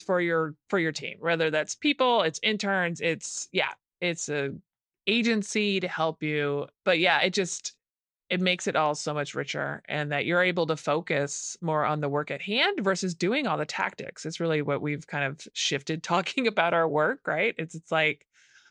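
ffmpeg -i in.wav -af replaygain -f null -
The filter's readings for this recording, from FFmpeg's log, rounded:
track_gain = +6.4 dB
track_peak = 0.280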